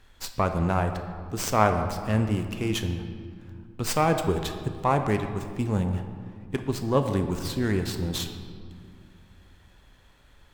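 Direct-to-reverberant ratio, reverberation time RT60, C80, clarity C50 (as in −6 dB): 6.5 dB, 2.2 s, 9.5 dB, 8.0 dB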